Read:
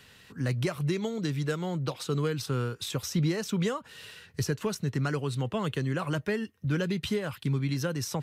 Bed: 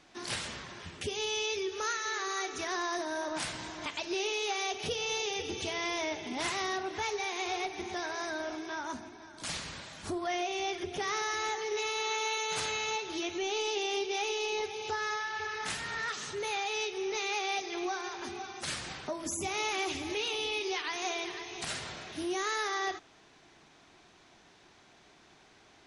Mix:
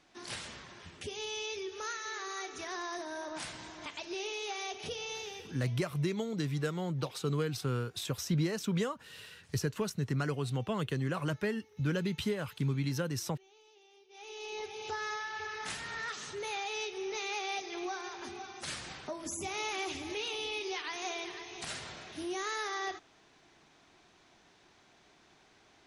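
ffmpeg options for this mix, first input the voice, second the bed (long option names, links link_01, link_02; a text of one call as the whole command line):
ffmpeg -i stem1.wav -i stem2.wav -filter_complex "[0:a]adelay=5150,volume=-3.5dB[link_01];[1:a]volume=20.5dB,afade=type=out:start_time=4.98:duration=0.82:silence=0.0630957,afade=type=in:start_time=14.09:duration=0.75:silence=0.0501187[link_02];[link_01][link_02]amix=inputs=2:normalize=0" out.wav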